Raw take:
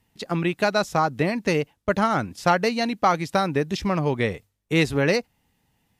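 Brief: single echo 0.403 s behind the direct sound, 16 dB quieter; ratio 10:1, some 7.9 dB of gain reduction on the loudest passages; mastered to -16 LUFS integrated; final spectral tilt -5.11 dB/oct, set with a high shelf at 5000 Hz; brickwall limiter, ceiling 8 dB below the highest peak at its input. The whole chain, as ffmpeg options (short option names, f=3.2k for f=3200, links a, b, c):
-af "highshelf=f=5k:g=-5,acompressor=threshold=-23dB:ratio=10,alimiter=limit=-20.5dB:level=0:latency=1,aecho=1:1:403:0.158,volume=15.5dB"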